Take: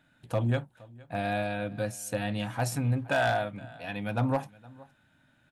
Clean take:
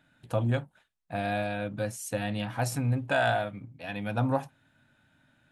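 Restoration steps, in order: clip repair -19 dBFS; interpolate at 4.09, 1.1 ms; inverse comb 0.466 s -23 dB

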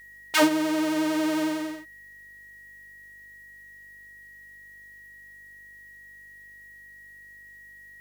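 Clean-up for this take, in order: de-hum 49.4 Hz, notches 16; notch 1900 Hz, Q 30; expander -41 dBFS, range -21 dB

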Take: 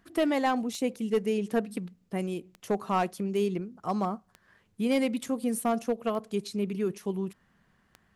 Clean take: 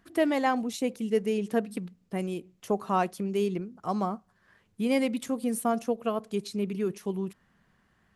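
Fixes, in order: clip repair -19 dBFS; de-click

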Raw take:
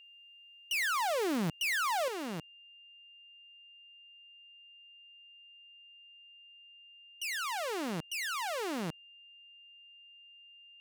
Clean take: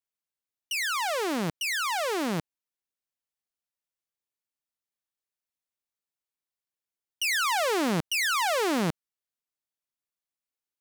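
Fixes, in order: clip repair -29.5 dBFS; notch 2800 Hz, Q 30; gain 0 dB, from 2.08 s +10 dB

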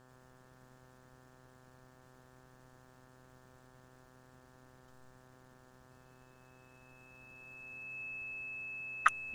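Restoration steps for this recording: de-hum 127.9 Hz, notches 14; notch 2600 Hz, Q 30

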